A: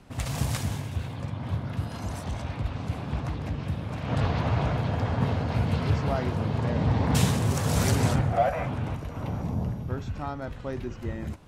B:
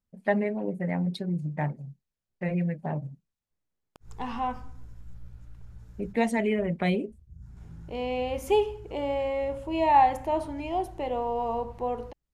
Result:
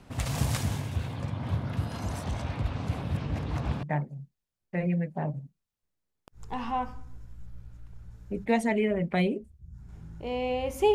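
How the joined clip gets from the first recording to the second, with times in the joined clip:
A
3.02–3.83 s: reverse
3.83 s: go over to B from 1.51 s

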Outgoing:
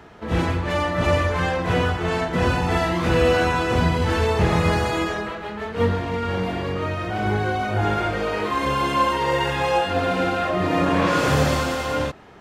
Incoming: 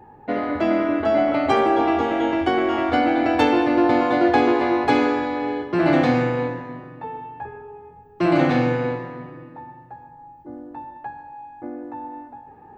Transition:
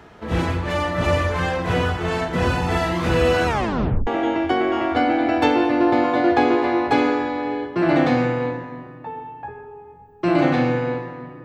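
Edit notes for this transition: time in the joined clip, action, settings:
outgoing
3.47 s: tape stop 0.60 s
4.07 s: go over to incoming from 2.04 s

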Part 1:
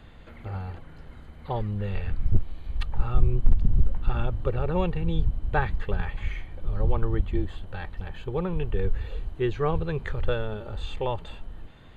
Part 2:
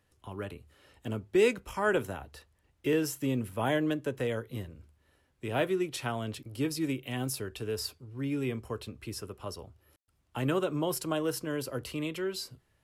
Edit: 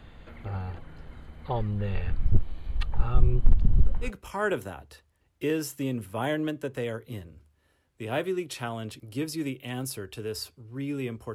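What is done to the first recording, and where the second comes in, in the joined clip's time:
part 1
4.06 s: go over to part 2 from 1.49 s, crossfade 0.10 s

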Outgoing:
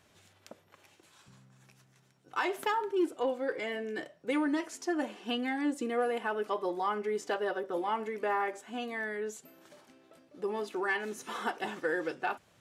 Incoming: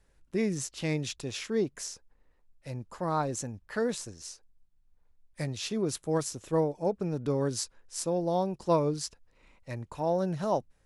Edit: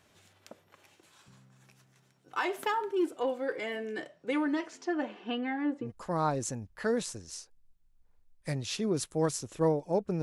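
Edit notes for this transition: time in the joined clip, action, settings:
outgoing
3.88–5.92 s: low-pass 12 kHz -> 1.5 kHz
5.86 s: go over to incoming from 2.78 s, crossfade 0.12 s

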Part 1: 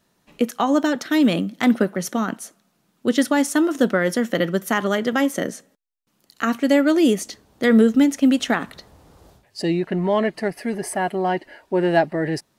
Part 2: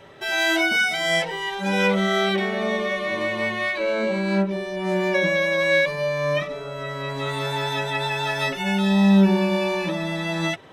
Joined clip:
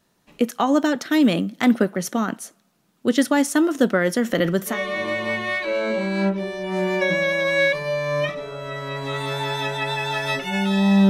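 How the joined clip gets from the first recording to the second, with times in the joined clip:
part 1
4.22–4.79 s: transient shaper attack 0 dB, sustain +6 dB
4.72 s: go over to part 2 from 2.85 s, crossfade 0.14 s

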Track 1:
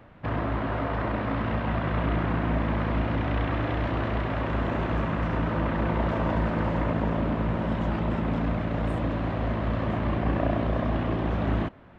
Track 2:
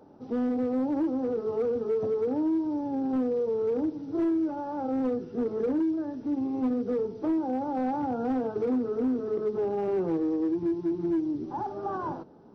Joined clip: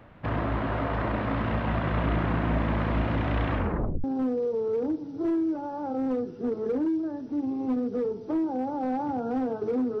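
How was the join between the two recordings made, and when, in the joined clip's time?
track 1
3.52 s: tape stop 0.52 s
4.04 s: go over to track 2 from 2.98 s

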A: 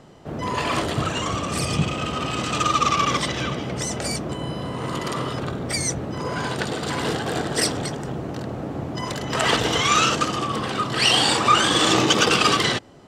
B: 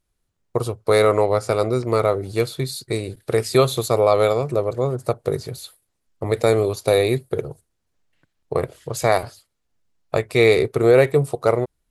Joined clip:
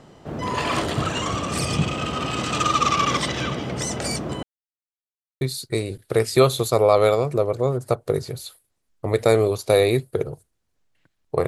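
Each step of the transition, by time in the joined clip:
A
4.43–5.41 s: mute
5.41 s: go over to B from 2.59 s

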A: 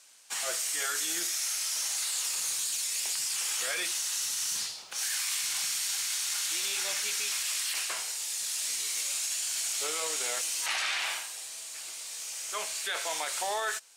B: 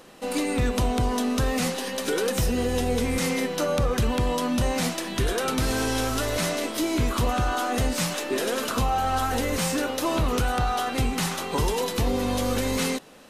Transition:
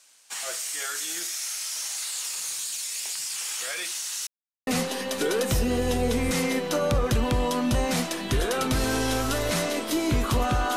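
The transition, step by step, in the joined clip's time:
A
4.27–4.67 s: mute
4.67 s: go over to B from 1.54 s

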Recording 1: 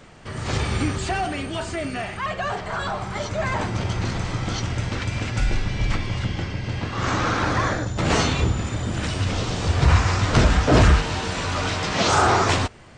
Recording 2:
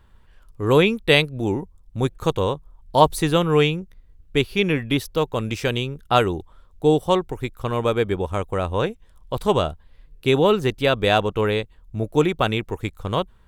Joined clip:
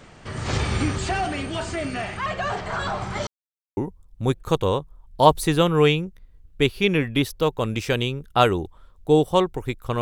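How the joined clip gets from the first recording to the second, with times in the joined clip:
recording 1
3.27–3.77 s: mute
3.77 s: go over to recording 2 from 1.52 s

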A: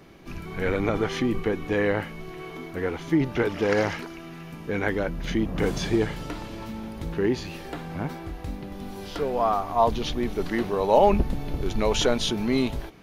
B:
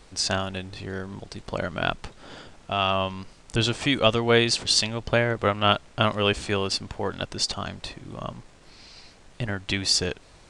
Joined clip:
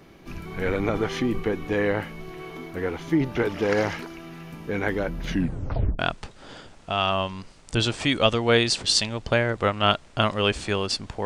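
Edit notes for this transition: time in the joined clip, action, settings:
A
5.29 s: tape stop 0.70 s
5.99 s: go over to B from 1.80 s

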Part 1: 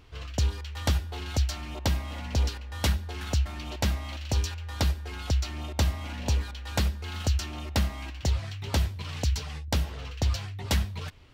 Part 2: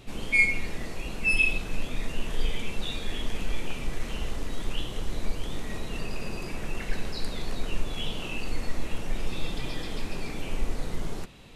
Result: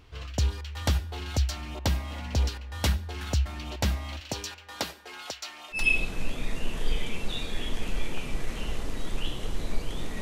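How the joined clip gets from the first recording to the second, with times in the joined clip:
part 1
4.19–5.87 s: high-pass 160 Hz -> 1 kHz
5.79 s: go over to part 2 from 1.32 s, crossfade 0.16 s

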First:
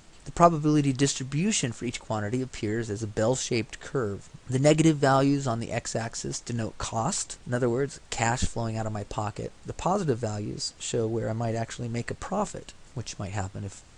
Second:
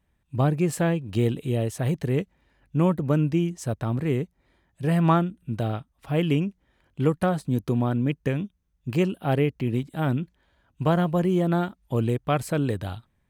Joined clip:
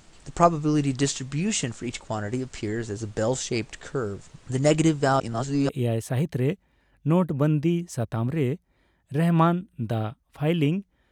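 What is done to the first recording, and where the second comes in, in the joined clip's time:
first
5.20–5.69 s: reverse
5.69 s: go over to second from 1.38 s

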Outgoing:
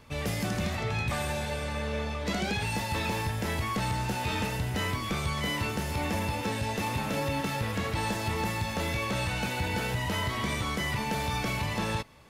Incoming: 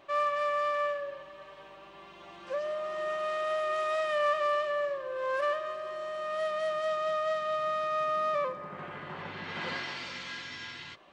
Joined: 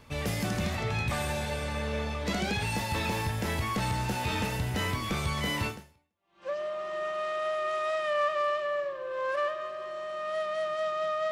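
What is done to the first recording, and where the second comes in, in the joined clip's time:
outgoing
6.08 s: go over to incoming from 2.13 s, crossfade 0.82 s exponential

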